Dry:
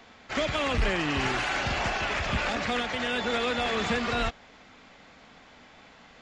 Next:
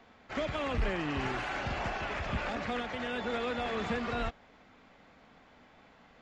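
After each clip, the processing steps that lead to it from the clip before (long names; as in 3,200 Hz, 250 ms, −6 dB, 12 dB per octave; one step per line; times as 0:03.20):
high-shelf EQ 2,600 Hz −10 dB
level −4.5 dB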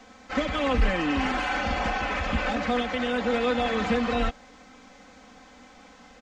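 comb filter 3.9 ms, depth 85%
noise in a band 3,100–7,200 Hz −69 dBFS
level +5.5 dB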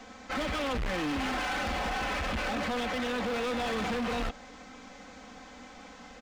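in parallel at +1 dB: brickwall limiter −24 dBFS, peak gain reduction 11.5 dB
on the sum: gain into a clipping stage and back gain 25 dB
level −4.5 dB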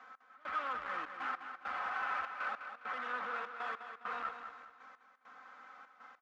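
resonant band-pass 1,300 Hz, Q 4.1
gate pattern "x..xxxx." 100 BPM −24 dB
repeating echo 204 ms, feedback 37%, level −8.5 dB
level +3 dB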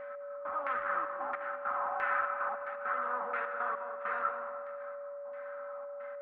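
auto-filter low-pass saw down 1.5 Hz 800–2,100 Hz
steady tone 570 Hz −41 dBFS
comb and all-pass reverb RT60 2.4 s, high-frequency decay 0.45×, pre-delay 80 ms, DRR 10 dB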